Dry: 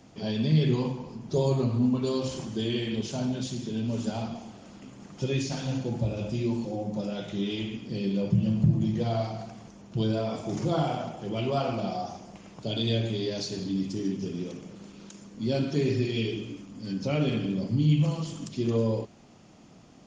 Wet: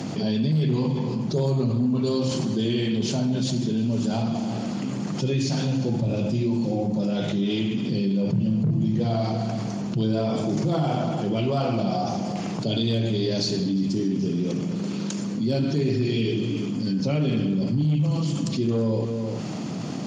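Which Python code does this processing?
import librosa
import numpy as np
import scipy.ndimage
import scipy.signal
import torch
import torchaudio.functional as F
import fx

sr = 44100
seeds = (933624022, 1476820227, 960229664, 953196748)

y = fx.peak_eq(x, sr, hz=4400.0, db=5.0, octaves=0.23)
y = y + 10.0 ** (-16.5 / 20.0) * np.pad(y, (int(344 * sr / 1000.0), 0))[:len(y)]
y = fx.clip_asym(y, sr, top_db=-19.0, bottom_db=-16.5)
y = scipy.signal.sosfilt(scipy.signal.butter(4, 130.0, 'highpass', fs=sr, output='sos'), y)
y = fx.low_shelf(y, sr, hz=210.0, db=11.5)
y = fx.env_flatten(y, sr, amount_pct=70)
y = y * 10.0 ** (-6.5 / 20.0)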